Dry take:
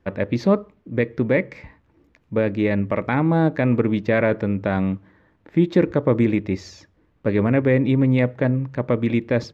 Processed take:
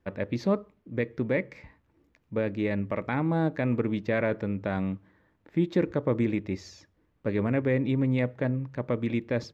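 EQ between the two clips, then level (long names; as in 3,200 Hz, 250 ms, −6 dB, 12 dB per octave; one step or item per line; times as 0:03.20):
high-shelf EQ 5,500 Hz +4.5 dB
−8.0 dB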